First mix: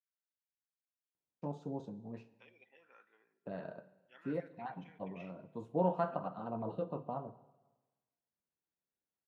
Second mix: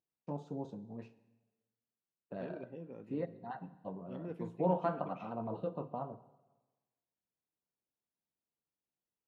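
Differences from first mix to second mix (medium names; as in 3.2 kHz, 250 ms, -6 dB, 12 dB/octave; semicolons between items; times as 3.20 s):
first voice: entry -1.15 s; second voice: remove resonant high-pass 1.5 kHz, resonance Q 3.2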